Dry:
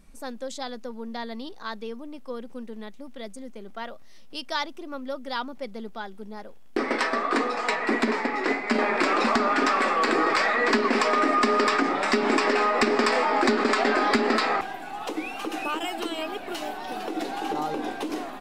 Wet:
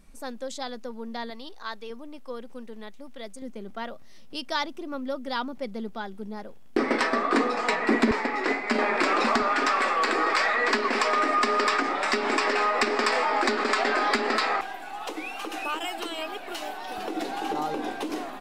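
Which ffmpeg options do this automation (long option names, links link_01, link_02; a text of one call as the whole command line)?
ffmpeg -i in.wav -af "asetnsamples=nb_out_samples=441:pad=0,asendcmd='1.3 equalizer g -12.5;1.9 equalizer g -6;3.42 equalizer g 5;8.11 equalizer g -3.5;9.42 equalizer g -11;16.98 equalizer g -2',equalizer=frequency=120:width_type=o:width=2.9:gain=-1.5" out.wav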